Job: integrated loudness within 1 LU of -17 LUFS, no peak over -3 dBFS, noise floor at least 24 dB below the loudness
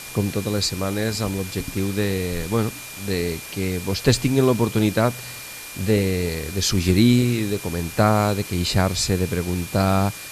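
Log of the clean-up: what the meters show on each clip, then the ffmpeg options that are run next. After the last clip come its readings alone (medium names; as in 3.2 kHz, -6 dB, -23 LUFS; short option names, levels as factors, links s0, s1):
steady tone 2.4 kHz; tone level -40 dBFS; noise floor -36 dBFS; noise floor target -46 dBFS; loudness -22.0 LUFS; peak level -3.5 dBFS; loudness target -17.0 LUFS
-> -af "bandreject=f=2400:w=30"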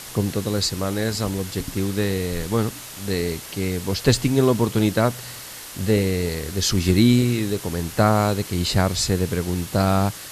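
steady tone not found; noise floor -37 dBFS; noise floor target -46 dBFS
-> -af "afftdn=nr=9:nf=-37"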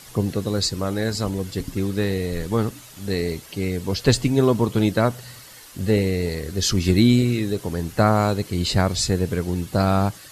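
noise floor -44 dBFS; noise floor target -46 dBFS
-> -af "afftdn=nr=6:nf=-44"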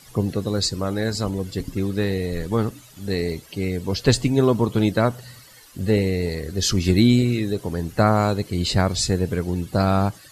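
noise floor -48 dBFS; loudness -22.0 LUFS; peak level -3.5 dBFS; loudness target -17.0 LUFS
-> -af "volume=1.78,alimiter=limit=0.708:level=0:latency=1"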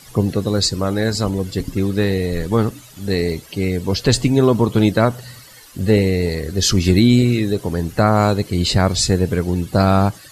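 loudness -17.5 LUFS; peak level -3.0 dBFS; noise floor -43 dBFS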